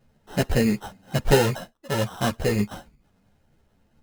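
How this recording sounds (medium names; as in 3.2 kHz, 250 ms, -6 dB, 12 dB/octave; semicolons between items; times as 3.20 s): aliases and images of a low sample rate 2.3 kHz, jitter 0%; a shimmering, thickened sound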